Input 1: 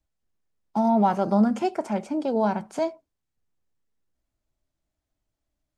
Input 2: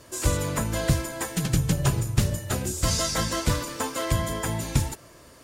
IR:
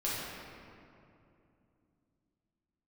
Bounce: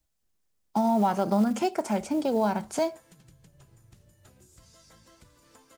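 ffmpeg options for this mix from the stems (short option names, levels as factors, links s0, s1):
-filter_complex "[0:a]highshelf=f=4200:g=9.5,acrusher=bits=7:mode=log:mix=0:aa=0.000001,volume=1.12[s0];[1:a]acompressor=threshold=0.02:ratio=8,adelay=1750,volume=0.106,asplit=2[s1][s2];[s2]volume=0.188,aecho=0:1:810:1[s3];[s0][s1][s3]amix=inputs=3:normalize=0,acompressor=threshold=0.0708:ratio=2"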